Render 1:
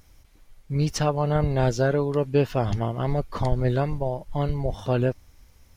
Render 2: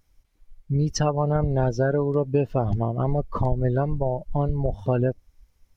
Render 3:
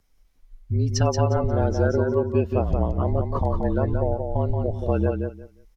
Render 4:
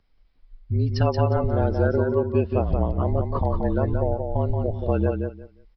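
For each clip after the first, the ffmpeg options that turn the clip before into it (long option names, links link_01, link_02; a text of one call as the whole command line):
ffmpeg -i in.wav -af "afftdn=noise_reduction=18:noise_floor=-30,acompressor=threshold=-26dB:ratio=2.5,volume=5.5dB" out.wav
ffmpeg -i in.wav -af "afreqshift=-39,aecho=1:1:178|356|534:0.562|0.107|0.0203" out.wav
ffmpeg -i in.wav -af "aresample=11025,aresample=44100" out.wav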